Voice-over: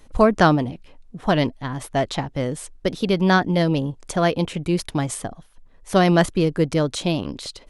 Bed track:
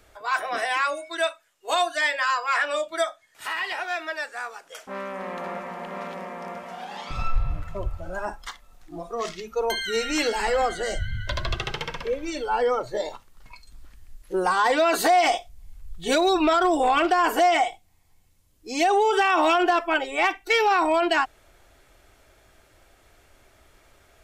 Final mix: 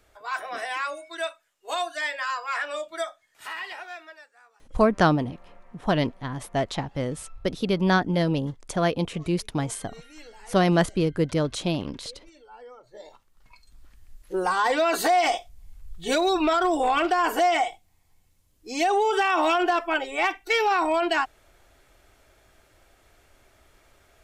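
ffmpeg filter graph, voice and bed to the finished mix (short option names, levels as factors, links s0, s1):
-filter_complex "[0:a]adelay=4600,volume=0.631[s0];[1:a]volume=5.96,afade=t=out:st=3.55:d=0.74:silence=0.133352,afade=t=in:st=12.83:d=1.48:silence=0.0891251[s1];[s0][s1]amix=inputs=2:normalize=0"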